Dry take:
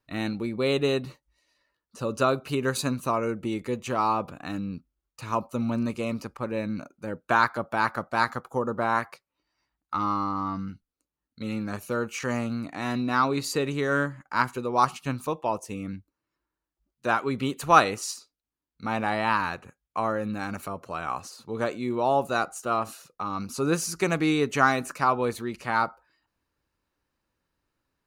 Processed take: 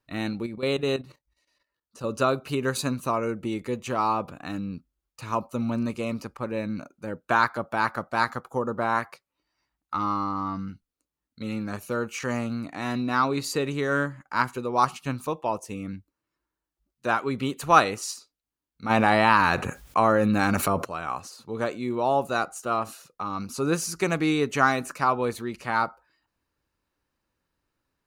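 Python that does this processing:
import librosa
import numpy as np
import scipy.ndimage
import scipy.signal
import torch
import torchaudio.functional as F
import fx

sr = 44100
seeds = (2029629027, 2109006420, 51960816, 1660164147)

y = fx.level_steps(x, sr, step_db=12, at=(0.46, 2.04))
y = fx.env_flatten(y, sr, amount_pct=50, at=(18.89, 20.84), fade=0.02)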